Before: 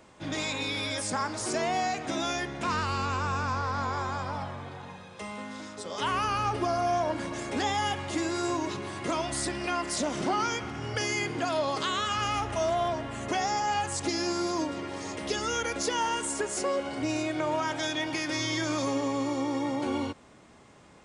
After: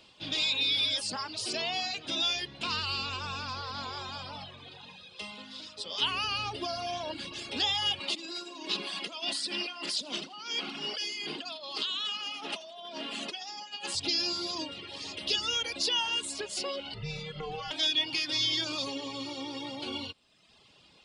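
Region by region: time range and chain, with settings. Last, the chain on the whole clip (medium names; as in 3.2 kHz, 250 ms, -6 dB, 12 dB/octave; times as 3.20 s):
8.00–13.95 s: steep high-pass 160 Hz 96 dB/octave + compressor with a negative ratio -35 dBFS + two-band feedback delay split 370 Hz, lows 161 ms, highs 81 ms, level -11 dB
16.94–17.71 s: treble shelf 3.3 kHz -12 dB + frequency shift -160 Hz
whole clip: high-order bell 3.6 kHz +16 dB 1.2 oct; reverb removal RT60 0.94 s; treble shelf 8 kHz +4.5 dB; trim -7 dB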